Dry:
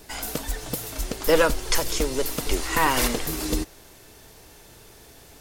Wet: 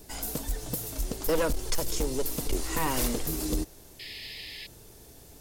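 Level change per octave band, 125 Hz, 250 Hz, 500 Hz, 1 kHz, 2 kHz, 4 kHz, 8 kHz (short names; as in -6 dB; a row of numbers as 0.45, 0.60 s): -2.0, -4.0, -7.0, -9.0, -11.0, -7.0, -4.5 dB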